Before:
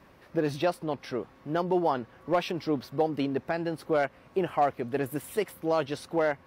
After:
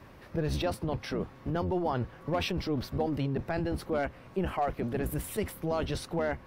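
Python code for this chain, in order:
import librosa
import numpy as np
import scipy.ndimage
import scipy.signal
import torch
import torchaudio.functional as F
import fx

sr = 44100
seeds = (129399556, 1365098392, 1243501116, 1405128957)

p1 = fx.octave_divider(x, sr, octaves=1, level_db=1.0)
p2 = fx.over_compress(p1, sr, threshold_db=-32.0, ratio=-0.5)
p3 = p1 + (p2 * 10.0 ** (-1.0 / 20.0))
y = p3 * 10.0 ** (-6.0 / 20.0)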